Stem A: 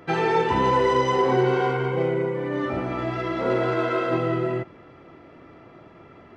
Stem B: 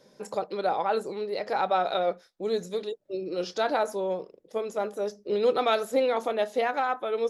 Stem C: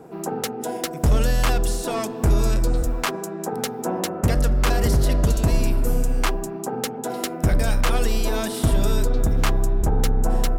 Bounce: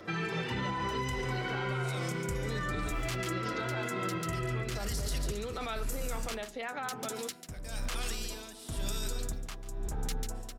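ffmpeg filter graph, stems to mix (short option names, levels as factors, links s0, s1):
-filter_complex "[0:a]bandreject=f=880:w=14,asplit=2[s0][s1];[s1]adelay=6.2,afreqshift=-1.5[s2];[s0][s2]amix=inputs=2:normalize=1,volume=1.26,asplit=2[s3][s4];[s4]volume=0.473[s5];[1:a]acompressor=mode=upward:threshold=0.00316:ratio=2.5,lowpass=f=2900:p=1,volume=1[s6];[2:a]equalizer=f=5900:t=o:w=2.9:g=9,aeval=exprs='val(0)*pow(10,-21*(0.5-0.5*cos(2*PI*1*n/s))/20)':c=same,adelay=50,volume=0.596,afade=t=in:st=1.85:d=0.47:silence=0.281838,asplit=2[s7][s8];[s8]volume=0.2[s9];[s6][s7]amix=inputs=2:normalize=0,alimiter=limit=0.0794:level=0:latency=1:release=12,volume=1[s10];[s5][s9]amix=inputs=2:normalize=0,aecho=0:1:143:1[s11];[s3][s10][s11]amix=inputs=3:normalize=0,acrossover=split=220|1200[s12][s13][s14];[s12]acompressor=threshold=0.0282:ratio=4[s15];[s13]acompressor=threshold=0.00631:ratio=4[s16];[s14]acompressor=threshold=0.02:ratio=4[s17];[s15][s16][s17]amix=inputs=3:normalize=0,alimiter=level_in=1.06:limit=0.0631:level=0:latency=1:release=139,volume=0.944"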